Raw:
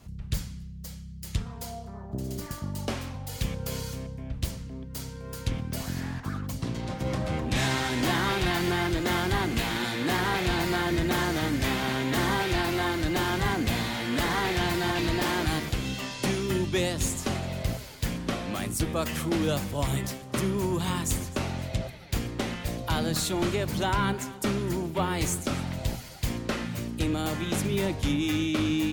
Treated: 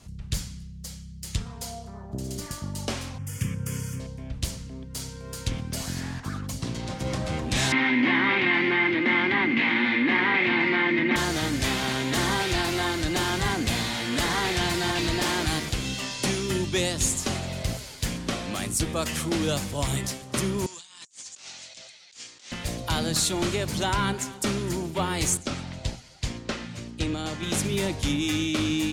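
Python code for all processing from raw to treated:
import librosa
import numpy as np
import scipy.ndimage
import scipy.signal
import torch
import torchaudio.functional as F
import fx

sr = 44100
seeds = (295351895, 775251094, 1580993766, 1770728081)

y = fx.chain(x, sr, fx.highpass(hz=100.0, slope=24),
    fx.low_shelf(hz=140.0, db=11.5),
    fx.fixed_phaser(hz=1700.0, stages=4), at=(3.18, 4.0))
y = fx.chain(y, sr, fx.cabinet(low_hz=170.0, low_slope=24, high_hz=2800.0, hz=(180.0, 250.0, 440.0, 680.0, 1400.0, 2100.0), db=(-9, 9, -7, -10, -5, 10)),
    fx.env_flatten(amount_pct=50), at=(7.72, 11.16))
y = fx.chain(y, sr, fx.cheby2_lowpass(hz=12000.0, order=4, stop_db=40),
    fx.differentiator(),
    fx.over_compress(threshold_db=-49.0, ratio=-0.5), at=(20.66, 22.52))
y = fx.chain(y, sr, fx.lowpass(hz=6500.0, slope=12),
    fx.upward_expand(threshold_db=-41.0, expansion=1.5), at=(25.37, 27.43))
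y = scipy.signal.sosfilt(scipy.signal.butter(2, 9100.0, 'lowpass', fs=sr, output='sos'), y)
y = fx.high_shelf(y, sr, hz=4200.0, db=10.5)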